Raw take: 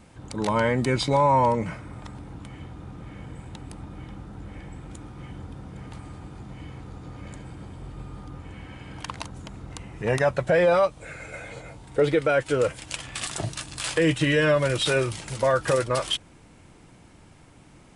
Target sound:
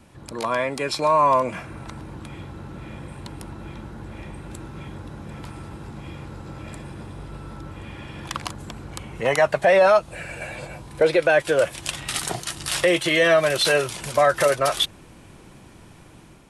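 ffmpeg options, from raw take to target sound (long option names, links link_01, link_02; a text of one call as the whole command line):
ffmpeg -i in.wav -filter_complex "[0:a]acrossover=split=320|1100[link_01][link_02][link_03];[link_01]acompressor=threshold=-39dB:ratio=6[link_04];[link_04][link_02][link_03]amix=inputs=3:normalize=0,asetrate=48000,aresample=44100,dynaudnorm=framelen=810:gausssize=3:maxgain=5dB" out.wav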